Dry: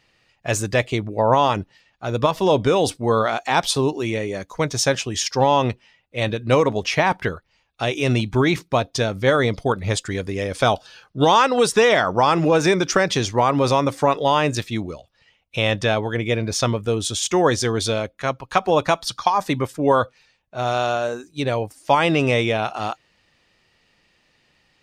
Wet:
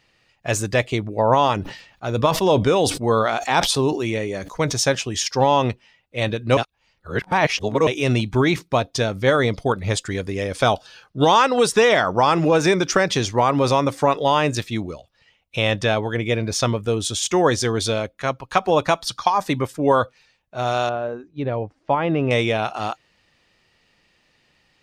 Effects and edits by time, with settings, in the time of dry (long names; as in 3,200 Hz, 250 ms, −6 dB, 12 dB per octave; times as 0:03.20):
0:01.59–0:04.74: level that may fall only so fast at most 89 dB per second
0:06.57–0:07.87: reverse
0:20.89–0:22.31: head-to-tape spacing loss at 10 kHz 42 dB